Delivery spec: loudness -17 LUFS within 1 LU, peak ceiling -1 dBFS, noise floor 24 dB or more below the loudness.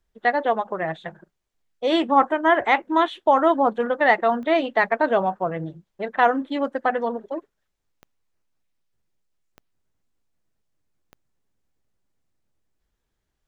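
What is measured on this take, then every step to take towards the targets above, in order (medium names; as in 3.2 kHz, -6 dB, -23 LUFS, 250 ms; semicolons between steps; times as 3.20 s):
clicks found 4; loudness -21.5 LUFS; peak level -4.5 dBFS; loudness target -17.0 LUFS
-> de-click; trim +4.5 dB; peak limiter -1 dBFS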